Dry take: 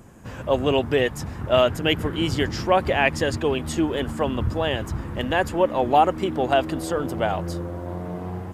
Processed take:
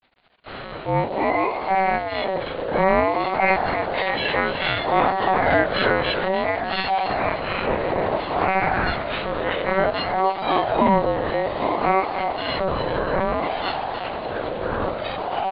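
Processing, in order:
every partial snapped to a pitch grid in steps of 4 semitones
healed spectral selection 0:01.71–0:02.47, 330–1,300 Hz both
mains-hum notches 60/120/180 Hz
in parallel at +1 dB: brickwall limiter −14.5 dBFS, peak gain reduction 11 dB
on the sum: bit reduction 5 bits
surface crackle 86 per second −33 dBFS
delay with pitch and tempo change per echo 528 ms, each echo −6 semitones, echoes 3, each echo −6 dB
tempo change 1.1×
on a send: repeating echo 150 ms, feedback 48%, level −11 dB
on the sum: wrong playback speed 15 ips tape played at 7.5 ips
one-pitch LPC vocoder at 8 kHz 190 Hz
ring modulator whose carrier an LFO sweeps 640 Hz, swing 20%, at 0.58 Hz
level −4 dB

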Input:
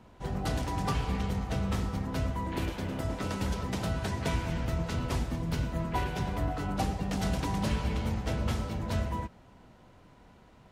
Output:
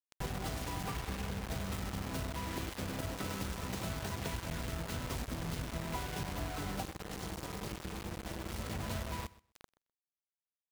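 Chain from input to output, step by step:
0:00.87–0:01.46: variable-slope delta modulation 16 kbit/s
downward compressor 10 to 1, threshold −41 dBFS, peak gain reduction 17 dB
dead-zone distortion −56.5 dBFS
0:06.83–0:08.53: amplitude modulation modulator 260 Hz, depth 80%
bit reduction 8 bits
repeating echo 127 ms, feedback 15%, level −20.5 dB
level +6.5 dB

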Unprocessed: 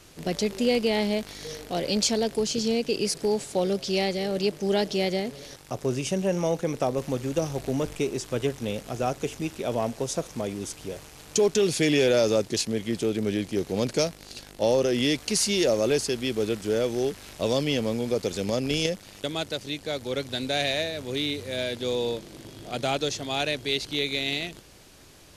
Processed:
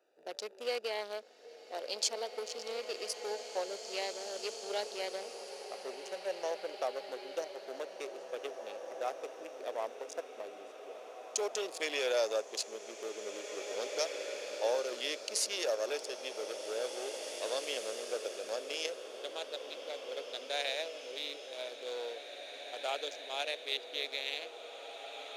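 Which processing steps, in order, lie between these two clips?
adaptive Wiener filter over 41 samples
high-pass filter 520 Hz 24 dB per octave
slow-attack reverb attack 2,430 ms, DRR 5.5 dB
level −6 dB

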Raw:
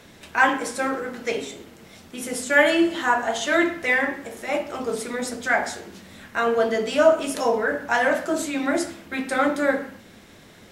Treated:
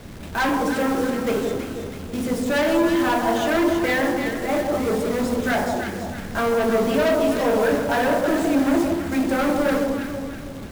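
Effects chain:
spectral tilt −3.5 dB per octave
log-companded quantiser 4 bits
soft clipping −20.5 dBFS, distortion −6 dB
on a send: delay that swaps between a low-pass and a high-pass 163 ms, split 1,100 Hz, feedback 65%, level −3 dB
on the sum: level +3 dB

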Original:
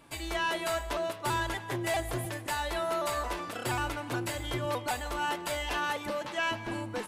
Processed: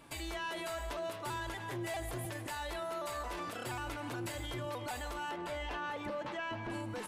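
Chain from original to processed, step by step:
0:05.31–0:06.70: low-pass filter 1,900 Hz 6 dB per octave
brickwall limiter −32 dBFS, peak gain reduction 9 dB

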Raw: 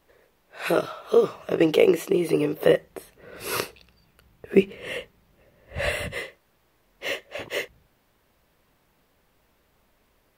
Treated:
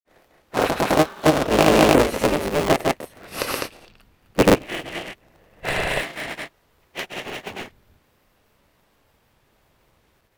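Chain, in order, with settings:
sub-harmonics by changed cycles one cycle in 3, inverted
granular cloud 158 ms, grains 23 per second, spray 223 ms, pitch spread up and down by 0 semitones
level +7 dB

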